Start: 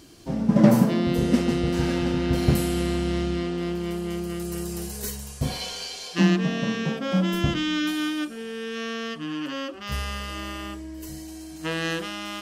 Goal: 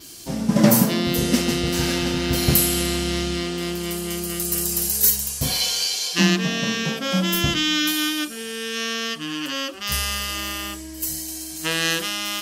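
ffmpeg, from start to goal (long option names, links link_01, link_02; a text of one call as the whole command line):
ffmpeg -i in.wav -af "adynamicequalizer=threshold=0.00251:dfrequency=8900:dqfactor=1.7:tfrequency=8900:tqfactor=1.7:attack=5:release=100:ratio=0.375:range=2.5:mode=cutabove:tftype=bell,crystalizer=i=6:c=0" out.wav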